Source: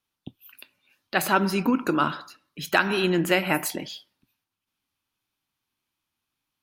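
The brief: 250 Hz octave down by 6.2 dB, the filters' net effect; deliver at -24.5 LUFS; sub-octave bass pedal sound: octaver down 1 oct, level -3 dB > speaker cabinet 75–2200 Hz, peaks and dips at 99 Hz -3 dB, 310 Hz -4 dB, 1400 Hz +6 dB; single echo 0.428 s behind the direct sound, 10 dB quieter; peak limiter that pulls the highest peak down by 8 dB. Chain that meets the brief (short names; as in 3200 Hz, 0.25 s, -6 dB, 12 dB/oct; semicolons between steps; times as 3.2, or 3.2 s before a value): bell 250 Hz -7 dB; limiter -12.5 dBFS; echo 0.428 s -10 dB; octaver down 1 oct, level -3 dB; speaker cabinet 75–2200 Hz, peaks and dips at 99 Hz -3 dB, 310 Hz -4 dB, 1400 Hz +6 dB; gain +2.5 dB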